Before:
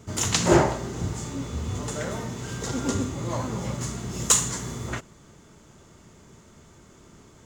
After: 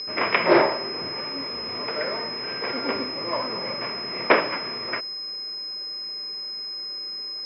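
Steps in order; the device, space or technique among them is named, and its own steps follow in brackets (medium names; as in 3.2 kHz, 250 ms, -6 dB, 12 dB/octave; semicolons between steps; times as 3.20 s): toy sound module (decimation joined by straight lines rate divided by 6×; class-D stage that switches slowly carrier 5.1 kHz; cabinet simulation 520–3700 Hz, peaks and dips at 800 Hz -8 dB, 1.4 kHz -4 dB, 2.3 kHz +9 dB); trim +8 dB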